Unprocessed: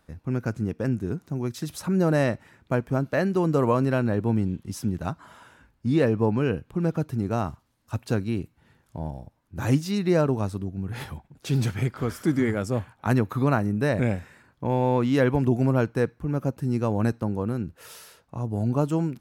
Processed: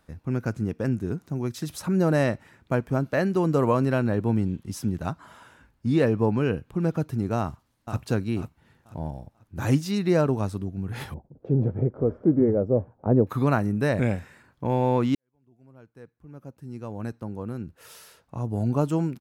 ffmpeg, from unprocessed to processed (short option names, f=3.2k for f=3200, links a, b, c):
-filter_complex "[0:a]asplit=2[a][b];[b]afade=t=in:st=7.38:d=0.01,afade=t=out:st=7.99:d=0.01,aecho=0:1:490|980|1470|1960:0.375837|0.112751|0.0338254|0.0101476[c];[a][c]amix=inputs=2:normalize=0,asettb=1/sr,asplit=3[d][e][f];[d]atrim=end=11.144[g];[e]atrim=start=11.14:end=13.27,asetpts=PTS-STARTPTS,afade=t=in:d=0.004:c=qsin,afade=t=out:st=2.126:d=0.004:c=qsin,lowpass=f=520:t=q:w=2.5[h];[f]atrim=start=13.266[i];[g][h]acrossfade=d=0.004:c1=hsin:c2=qsin[j];[j][i]acrossfade=d=0.004:c1=qsin:c2=hsin,asplit=2[k][l];[k]atrim=end=15.15,asetpts=PTS-STARTPTS,afade=t=out:st=15.146:d=0.004:c=hsin[m];[l]atrim=start=15.15,asetpts=PTS-STARTPTS,afade=t=in:d=3.25:c=qua[n];[m][n]concat=n=2:v=0:a=1"